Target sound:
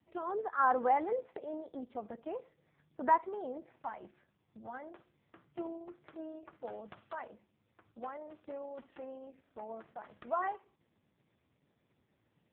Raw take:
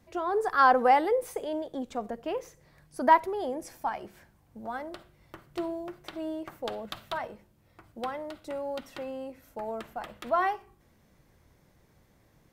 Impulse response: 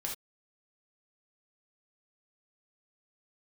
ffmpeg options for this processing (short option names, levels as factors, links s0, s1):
-filter_complex "[0:a]acrossover=split=2600[s0][s1];[s1]acompressor=threshold=0.00141:ratio=4:attack=1:release=60[s2];[s0][s2]amix=inputs=2:normalize=0,asplit=2[s3][s4];[1:a]atrim=start_sample=2205[s5];[s4][s5]afir=irnorm=-1:irlink=0,volume=0.112[s6];[s3][s6]amix=inputs=2:normalize=0,volume=0.398" -ar 8000 -c:a libopencore_amrnb -b:a 4750